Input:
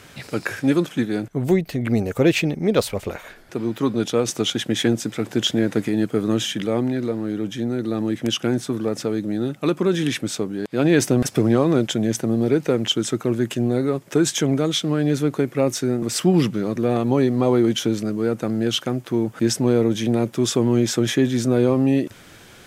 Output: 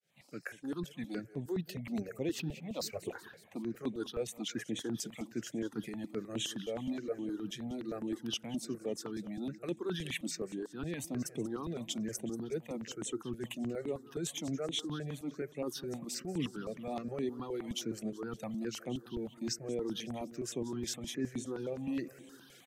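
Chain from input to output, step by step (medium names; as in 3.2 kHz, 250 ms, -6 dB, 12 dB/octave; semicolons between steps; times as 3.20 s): fade-in on the opening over 1.59 s; reverb removal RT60 1.9 s; reverse; compression, threshold -27 dBFS, peak gain reduction 14 dB; reverse; high-pass 130 Hz 24 dB/octave; feedback delay 186 ms, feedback 58%, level -17 dB; stepped phaser 9.6 Hz 280–4900 Hz; trim -4.5 dB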